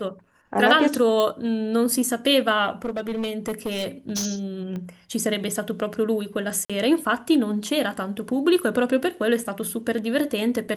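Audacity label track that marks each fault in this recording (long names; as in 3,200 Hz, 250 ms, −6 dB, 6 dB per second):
1.200000	1.200000	click −11 dBFS
2.840000	4.260000	clipping −22.5 dBFS
4.760000	4.760000	click −22 dBFS
6.650000	6.700000	drop-out 46 ms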